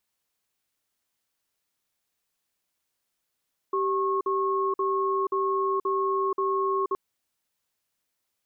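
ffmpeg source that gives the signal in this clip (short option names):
-f lavfi -i "aevalsrc='0.0531*(sin(2*PI*388*t)+sin(2*PI*1090*t))*clip(min(mod(t,0.53),0.48-mod(t,0.53))/0.005,0,1)':d=3.22:s=44100"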